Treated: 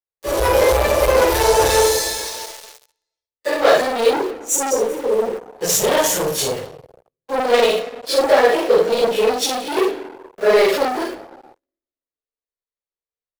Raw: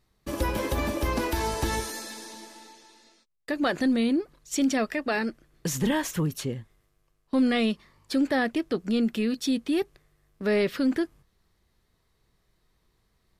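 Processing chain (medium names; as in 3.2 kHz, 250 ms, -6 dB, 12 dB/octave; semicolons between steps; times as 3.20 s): phase randomisation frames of 100 ms; spectral selection erased 4.29–5.46 s, 560–5700 Hz; on a send: early reflections 48 ms -6.5 dB, 59 ms -8 dB; on the sum: dynamic bell 1.8 kHz, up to -4 dB, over -42 dBFS, Q 0.8; in parallel at -8 dB: bit crusher 7-bit; on the sum: reverberation RT60 1.4 s, pre-delay 3 ms, DRR 12 dB; waveshaping leveller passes 5; resonant low shelf 350 Hz -10.5 dB, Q 3; three bands expanded up and down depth 40%; trim -5.5 dB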